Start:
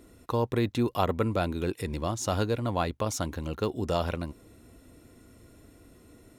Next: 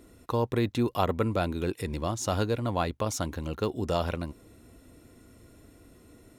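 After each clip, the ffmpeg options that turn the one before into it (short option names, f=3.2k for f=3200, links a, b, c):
-af anull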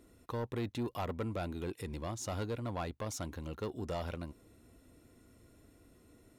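-af "asoftclip=type=tanh:threshold=-22.5dB,volume=-7.5dB"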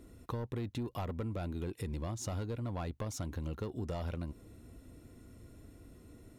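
-af "lowshelf=f=260:g=8,acompressor=threshold=-37dB:ratio=6,volume=2dB"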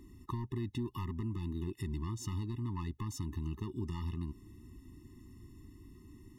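-af "afftfilt=real='re*eq(mod(floor(b*sr/1024/430),2),0)':imag='im*eq(mod(floor(b*sr/1024/430),2),0)':win_size=1024:overlap=0.75,volume=1dB"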